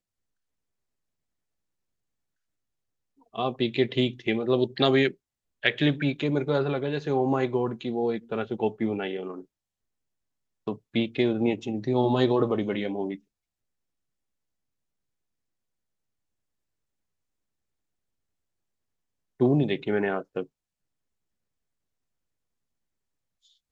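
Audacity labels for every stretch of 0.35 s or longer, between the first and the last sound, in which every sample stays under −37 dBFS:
5.110000	5.630000	silence
9.410000	10.670000	silence
13.150000	19.400000	silence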